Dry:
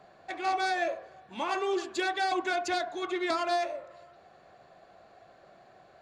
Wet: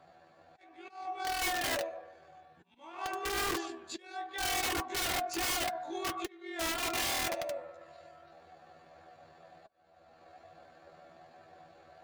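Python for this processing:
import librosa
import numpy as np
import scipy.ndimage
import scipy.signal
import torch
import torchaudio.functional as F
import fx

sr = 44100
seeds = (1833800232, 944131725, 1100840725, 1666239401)

y = fx.stretch_grains(x, sr, factor=2.0, grain_ms=49.0)
y = fx.rider(y, sr, range_db=10, speed_s=2.0)
y = fx.auto_swell(y, sr, attack_ms=660.0)
y = fx.dynamic_eq(y, sr, hz=840.0, q=1.2, threshold_db=-45.0, ratio=4.0, max_db=4)
y = (np.mod(10.0 ** (25.0 / 20.0) * y + 1.0, 2.0) - 1.0) / 10.0 ** (25.0 / 20.0)
y = fx.notch_comb(y, sr, f0_hz=210.0)
y = F.gain(torch.from_numpy(y), -1.5).numpy()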